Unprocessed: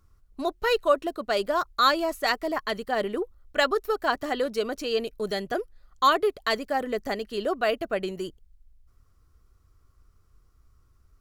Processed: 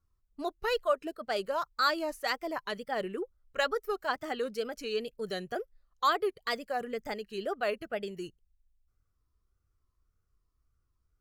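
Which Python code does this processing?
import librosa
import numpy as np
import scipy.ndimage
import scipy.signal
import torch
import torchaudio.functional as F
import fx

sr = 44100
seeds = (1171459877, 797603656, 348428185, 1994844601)

y = fx.noise_reduce_blind(x, sr, reduce_db=9)
y = fx.wow_flutter(y, sr, seeds[0], rate_hz=2.1, depth_cents=120.0)
y = y * librosa.db_to_amplitude(-6.5)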